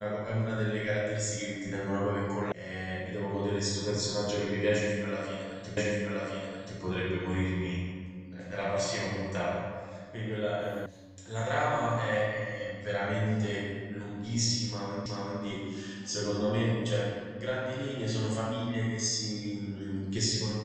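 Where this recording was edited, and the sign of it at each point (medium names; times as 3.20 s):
2.52 s: sound stops dead
5.77 s: repeat of the last 1.03 s
10.86 s: sound stops dead
15.06 s: repeat of the last 0.37 s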